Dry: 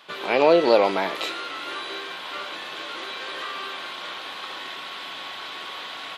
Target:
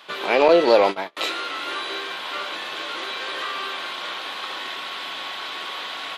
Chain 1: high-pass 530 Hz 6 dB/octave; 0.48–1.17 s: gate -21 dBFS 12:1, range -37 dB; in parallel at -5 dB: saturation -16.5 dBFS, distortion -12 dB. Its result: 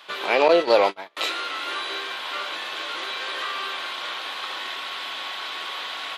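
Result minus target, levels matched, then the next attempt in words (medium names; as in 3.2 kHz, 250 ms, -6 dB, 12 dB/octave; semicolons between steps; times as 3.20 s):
250 Hz band -3.0 dB
high-pass 200 Hz 6 dB/octave; 0.48–1.17 s: gate -21 dBFS 12:1, range -37 dB; in parallel at -5 dB: saturation -16.5 dBFS, distortion -9 dB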